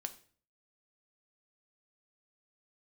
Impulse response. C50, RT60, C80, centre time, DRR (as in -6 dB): 15.0 dB, 0.45 s, 19.0 dB, 6 ms, 8.0 dB